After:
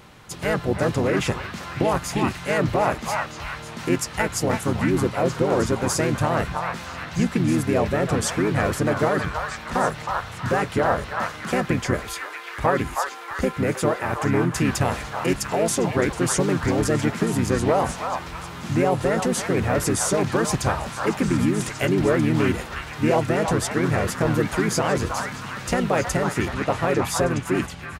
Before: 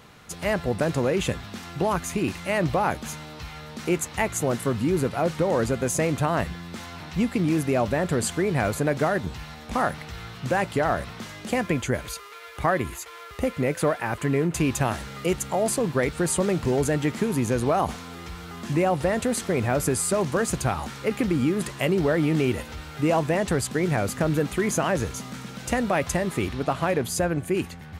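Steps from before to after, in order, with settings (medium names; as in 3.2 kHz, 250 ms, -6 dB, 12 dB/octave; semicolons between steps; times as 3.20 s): repeats whose band climbs or falls 317 ms, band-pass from 1.2 kHz, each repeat 0.7 oct, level -1 dB; harmony voices -5 st -2 dB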